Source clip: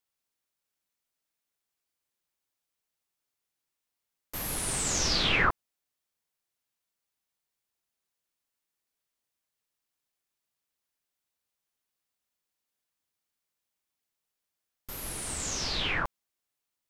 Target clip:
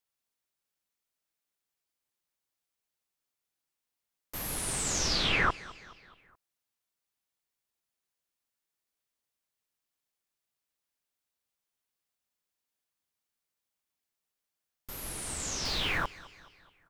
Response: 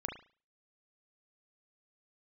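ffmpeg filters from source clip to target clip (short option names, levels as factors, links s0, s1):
-filter_complex "[0:a]asettb=1/sr,asplit=3[s0][s1][s2];[s0]atrim=end=15.654[s3];[s1]atrim=start=15.65:end=16.05,asetpts=PTS-STARTPTS,afade=t=in:d=0.004:c=qsin,afade=t=out:st=0.396:d=0.004:c=qsin,aeval=exprs='val(0)+0.5*0.0119*sgn(val(0))':c=same[s4];[s2]atrim=start=16.046[s5];[s3][s4]acrossfade=d=0.004:c1=hsin:c2=qsin[s6];[s6][s5]acrossfade=d=0.004:c1=qsin:c2=hsin,aecho=1:1:212|424|636|848:0.1|0.052|0.027|0.0141,volume=0.794"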